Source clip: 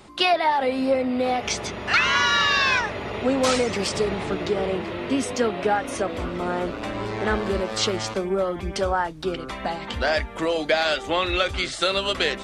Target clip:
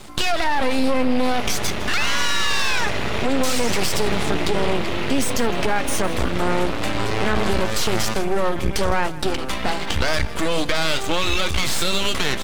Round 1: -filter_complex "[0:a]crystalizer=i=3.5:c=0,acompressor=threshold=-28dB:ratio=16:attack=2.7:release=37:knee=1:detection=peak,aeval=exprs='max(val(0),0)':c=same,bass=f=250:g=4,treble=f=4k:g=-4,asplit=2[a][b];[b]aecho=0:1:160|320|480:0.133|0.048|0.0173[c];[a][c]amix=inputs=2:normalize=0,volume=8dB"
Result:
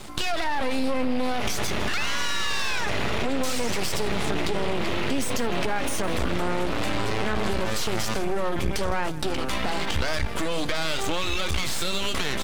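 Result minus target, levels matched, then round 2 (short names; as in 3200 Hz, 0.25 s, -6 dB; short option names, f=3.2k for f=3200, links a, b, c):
compressor: peak gain reduction +6 dB
-filter_complex "[0:a]crystalizer=i=3.5:c=0,acompressor=threshold=-21.5dB:ratio=16:attack=2.7:release=37:knee=1:detection=peak,aeval=exprs='max(val(0),0)':c=same,bass=f=250:g=4,treble=f=4k:g=-4,asplit=2[a][b];[b]aecho=0:1:160|320|480:0.133|0.048|0.0173[c];[a][c]amix=inputs=2:normalize=0,volume=8dB"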